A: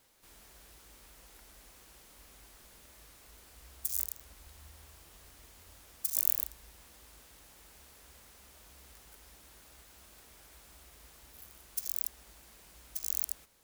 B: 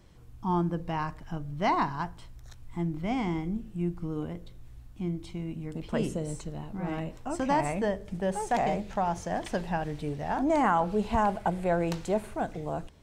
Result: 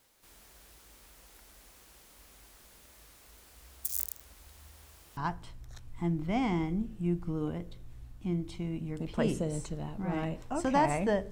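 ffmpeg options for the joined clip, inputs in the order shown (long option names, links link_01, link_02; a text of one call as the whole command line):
ffmpeg -i cue0.wav -i cue1.wav -filter_complex "[0:a]apad=whole_dur=11.31,atrim=end=11.31,atrim=end=5.172[link_01];[1:a]atrim=start=1.918:end=8.06[link_02];[link_01][link_02]acrossfade=duration=0.004:curve1=hsin:curve2=hsin" out.wav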